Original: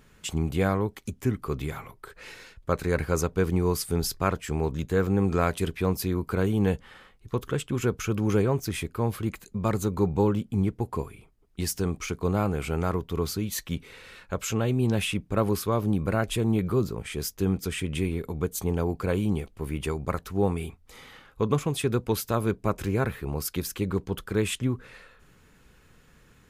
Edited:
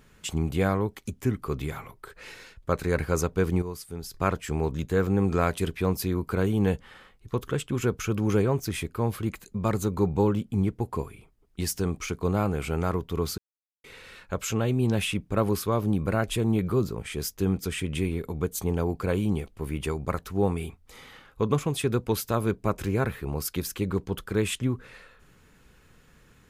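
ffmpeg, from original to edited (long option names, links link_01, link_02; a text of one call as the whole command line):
ffmpeg -i in.wav -filter_complex "[0:a]asplit=5[link_01][link_02][link_03][link_04][link_05];[link_01]atrim=end=3.622[link_06];[link_02]atrim=start=3.618:end=4.142,asetpts=PTS-STARTPTS,volume=-10.5dB[link_07];[link_03]atrim=start=4.138:end=13.38,asetpts=PTS-STARTPTS,afade=type=out:start_time=9.238:duration=0.004:curve=hsin[link_08];[link_04]atrim=start=13.38:end=13.84,asetpts=PTS-STARTPTS,volume=0[link_09];[link_05]atrim=start=13.84,asetpts=PTS-STARTPTS,afade=type=in:duration=0.004:curve=hsin[link_10];[link_06][link_07]acrossfade=duration=0.004:curve1=hsin:curve2=hsin[link_11];[link_08][link_09][link_10]concat=n=3:v=0:a=1[link_12];[link_11][link_12]acrossfade=duration=0.004:curve1=hsin:curve2=hsin" out.wav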